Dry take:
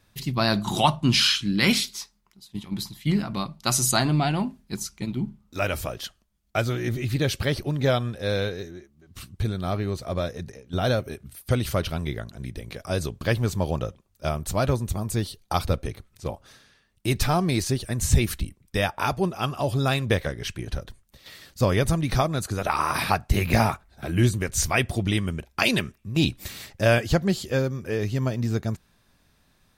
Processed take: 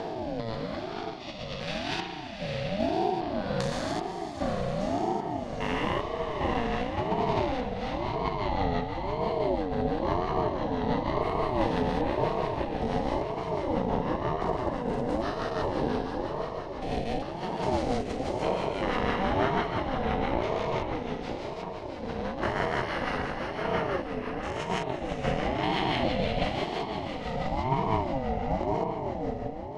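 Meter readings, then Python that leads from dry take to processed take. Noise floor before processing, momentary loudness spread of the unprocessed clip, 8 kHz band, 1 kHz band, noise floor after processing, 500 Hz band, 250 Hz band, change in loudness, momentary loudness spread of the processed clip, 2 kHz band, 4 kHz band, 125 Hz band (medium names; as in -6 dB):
-65 dBFS, 14 LU, under -20 dB, +0.5 dB, -37 dBFS, -1.0 dB, -4.0 dB, -5.0 dB, 7 LU, -6.0 dB, -10.0 dB, -9.5 dB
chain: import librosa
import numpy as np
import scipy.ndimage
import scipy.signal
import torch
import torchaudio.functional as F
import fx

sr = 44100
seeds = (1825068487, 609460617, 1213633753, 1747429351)

p1 = fx.spec_steps(x, sr, hold_ms=400)
p2 = fx.rev_spring(p1, sr, rt60_s=2.7, pass_ms=(34,), chirp_ms=50, drr_db=6.5)
p3 = fx.over_compress(p2, sr, threshold_db=-30.0, ratio=-0.5)
p4 = p3 + fx.echo_diffused(p3, sr, ms=555, feedback_pct=41, wet_db=-4.5, dry=0)
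p5 = fx.rotary_switch(p4, sr, hz=1.0, then_hz=6.0, switch_at_s=7.28)
p6 = scipy.signal.sosfilt(scipy.signal.butter(2, 3900.0, 'lowpass', fs=sr, output='sos'), p5)
p7 = fx.small_body(p6, sr, hz=(390.0, 1600.0), ring_ms=45, db=8)
p8 = fx.ring_lfo(p7, sr, carrier_hz=450.0, swing_pct=25, hz=0.97)
y = p8 * 10.0 ** (4.0 / 20.0)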